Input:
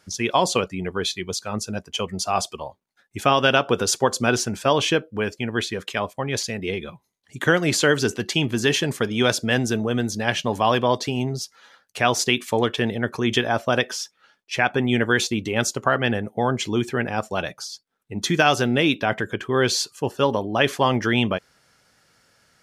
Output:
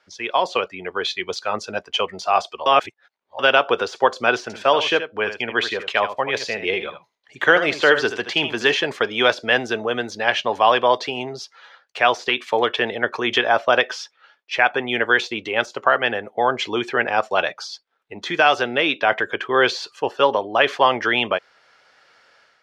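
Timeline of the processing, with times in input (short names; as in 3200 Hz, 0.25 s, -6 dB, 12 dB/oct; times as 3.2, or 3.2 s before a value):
2.66–3.39 reverse
4.42–8.72 echo 77 ms -10.5 dB
whole clip: de-esser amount 55%; three-band isolator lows -20 dB, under 410 Hz, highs -24 dB, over 4700 Hz; AGC gain up to 8.5 dB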